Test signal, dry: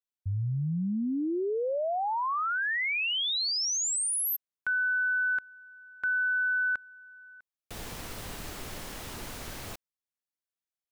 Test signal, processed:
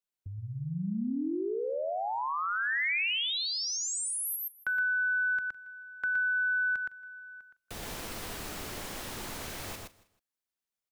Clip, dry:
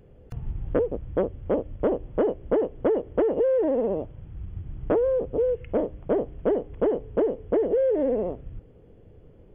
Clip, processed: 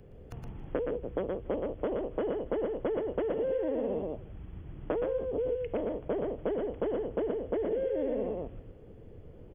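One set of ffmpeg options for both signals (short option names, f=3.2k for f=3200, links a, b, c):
-filter_complex "[0:a]asplit=2[a][b];[b]aecho=0:1:118:0.668[c];[a][c]amix=inputs=2:normalize=0,acrossover=split=190|2200[d][e][f];[d]acompressor=threshold=-44dB:ratio=4[g];[e]acompressor=threshold=-31dB:ratio=4[h];[f]acompressor=threshold=-32dB:ratio=4[i];[g][h][i]amix=inputs=3:normalize=0,asplit=2[j][k];[k]aecho=0:1:159|318:0.0944|0.0293[l];[j][l]amix=inputs=2:normalize=0"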